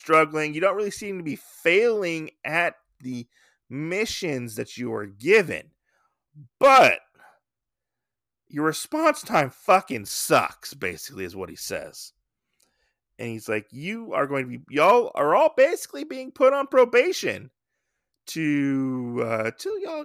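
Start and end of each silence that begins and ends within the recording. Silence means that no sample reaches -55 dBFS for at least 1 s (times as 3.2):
7.36–8.5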